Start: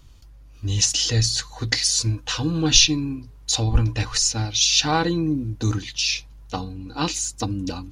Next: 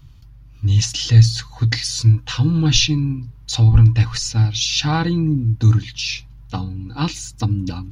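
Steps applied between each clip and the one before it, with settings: graphic EQ 125/500/8000 Hz +12/-7/-9 dB; trim +1 dB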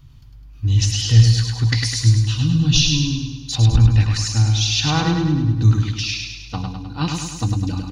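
time-frequency box 2.17–2.94 s, 290–2500 Hz -9 dB; on a send: feedback delay 103 ms, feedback 56%, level -4 dB; on the sum: trim -1.5 dB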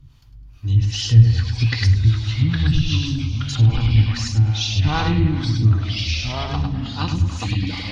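harmonic tremolo 2.5 Hz, depth 70%, crossover 400 Hz; ever faster or slower copies 484 ms, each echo -3 st, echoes 2, each echo -6 dB; low-pass that closes with the level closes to 2.6 kHz, closed at -13.5 dBFS; trim +1 dB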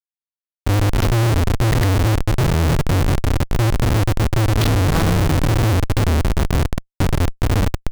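Schmitt trigger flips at -17.5 dBFS; trim +3 dB

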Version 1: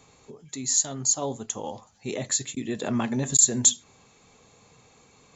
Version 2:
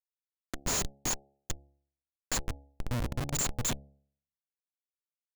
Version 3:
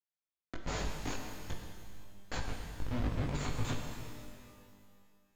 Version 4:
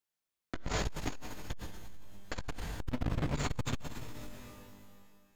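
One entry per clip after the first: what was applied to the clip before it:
high-order bell 580 Hz -15.5 dB 2.4 oct; Schmitt trigger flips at -25.5 dBFS; de-hum 69.67 Hz, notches 12
chorus voices 2, 0.49 Hz, delay 19 ms, depth 1 ms; distance through air 190 m; pitch-shifted reverb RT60 2 s, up +12 st, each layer -8 dB, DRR 2.5 dB
transformer saturation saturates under 120 Hz; trim +5.5 dB

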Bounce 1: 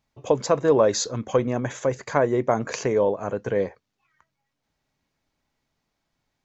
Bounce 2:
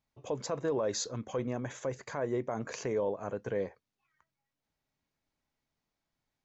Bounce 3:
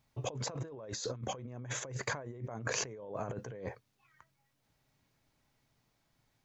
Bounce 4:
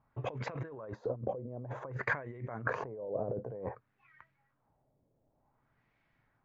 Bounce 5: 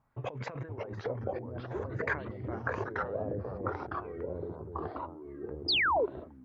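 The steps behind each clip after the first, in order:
peak limiter -14 dBFS, peak gain reduction 9.5 dB; trim -9 dB
peaking EQ 120 Hz +9 dB 0.38 oct; compressor with a negative ratio -43 dBFS, ratio -1; trim +1.5 dB
LFO low-pass sine 0.54 Hz 530–2200 Hz
painted sound fall, 5.68–6.06 s, 370–5200 Hz -27 dBFS; ever faster or slower copies 490 ms, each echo -3 st, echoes 3

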